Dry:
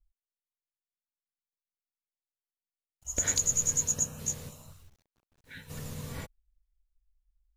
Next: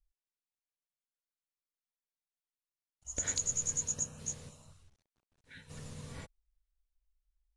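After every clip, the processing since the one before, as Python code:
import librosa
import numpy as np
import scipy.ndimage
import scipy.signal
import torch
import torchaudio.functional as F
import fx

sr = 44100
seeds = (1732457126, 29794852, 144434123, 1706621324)

y = scipy.signal.sosfilt(scipy.signal.ellip(4, 1.0, 70, 10000.0, 'lowpass', fs=sr, output='sos'), x)
y = y * librosa.db_to_amplitude(-5.5)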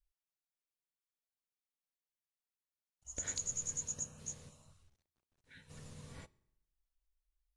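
y = fx.rev_fdn(x, sr, rt60_s=0.81, lf_ratio=1.1, hf_ratio=0.8, size_ms=16.0, drr_db=19.5)
y = y * librosa.db_to_amplitude(-5.5)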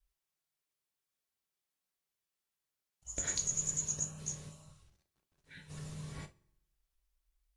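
y = fx.rev_gated(x, sr, seeds[0], gate_ms=90, shape='falling', drr_db=6.0)
y = fx.wow_flutter(y, sr, seeds[1], rate_hz=2.1, depth_cents=23.0)
y = y * librosa.db_to_amplitude(4.0)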